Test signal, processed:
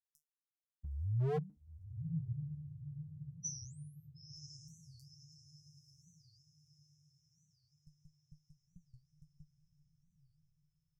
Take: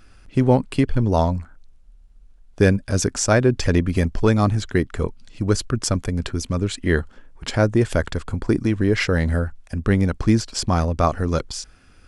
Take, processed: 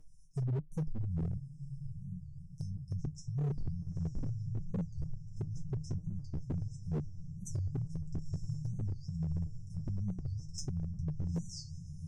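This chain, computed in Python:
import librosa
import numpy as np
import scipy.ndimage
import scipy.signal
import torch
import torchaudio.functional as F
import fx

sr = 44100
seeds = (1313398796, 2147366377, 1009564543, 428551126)

p1 = fx.brickwall_bandstop(x, sr, low_hz=180.0, high_hz=5100.0)
p2 = fx.level_steps(p1, sr, step_db=13)
p3 = fx.harmonic_tremolo(p2, sr, hz=1.7, depth_pct=50, crossover_hz=630.0)
p4 = fx.env_lowpass_down(p3, sr, base_hz=960.0, full_db=-26.0)
p5 = fx.comb_fb(p4, sr, f0_hz=150.0, decay_s=0.17, harmonics='all', damping=0.0, mix_pct=100)
p6 = p5 + fx.echo_diffused(p5, sr, ms=956, feedback_pct=47, wet_db=-9.5, dry=0)
p7 = 10.0 ** (-36.0 / 20.0) * (np.abs((p6 / 10.0 ** (-36.0 / 20.0) + 3.0) % 4.0 - 2.0) - 1.0)
p8 = fx.record_warp(p7, sr, rpm=45.0, depth_cents=250.0)
y = p8 * librosa.db_to_amplitude(7.5)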